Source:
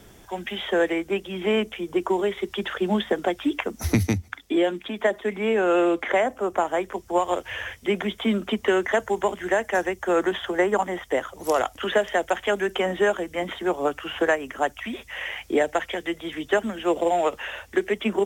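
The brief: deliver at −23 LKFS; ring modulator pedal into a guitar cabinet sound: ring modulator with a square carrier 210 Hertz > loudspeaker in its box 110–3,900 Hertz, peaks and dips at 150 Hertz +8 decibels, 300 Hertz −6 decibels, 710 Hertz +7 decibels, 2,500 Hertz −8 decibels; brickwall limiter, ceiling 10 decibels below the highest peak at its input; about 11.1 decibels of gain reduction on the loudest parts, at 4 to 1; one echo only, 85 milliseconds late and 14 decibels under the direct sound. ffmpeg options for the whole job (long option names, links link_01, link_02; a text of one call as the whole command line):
ffmpeg -i in.wav -af "acompressor=threshold=-30dB:ratio=4,alimiter=level_in=3.5dB:limit=-24dB:level=0:latency=1,volume=-3.5dB,aecho=1:1:85:0.2,aeval=exprs='val(0)*sgn(sin(2*PI*210*n/s))':channel_layout=same,highpass=110,equalizer=frequency=150:width_type=q:width=4:gain=8,equalizer=frequency=300:width_type=q:width=4:gain=-6,equalizer=frequency=710:width_type=q:width=4:gain=7,equalizer=frequency=2500:width_type=q:width=4:gain=-8,lowpass=frequency=3900:width=0.5412,lowpass=frequency=3900:width=1.3066,volume=13dB" out.wav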